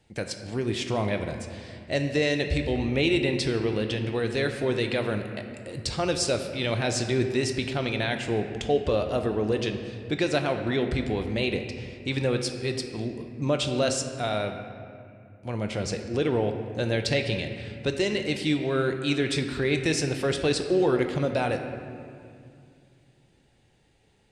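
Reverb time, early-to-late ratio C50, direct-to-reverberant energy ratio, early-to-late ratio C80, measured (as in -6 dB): 2.4 s, 7.0 dB, 5.0 dB, 8.0 dB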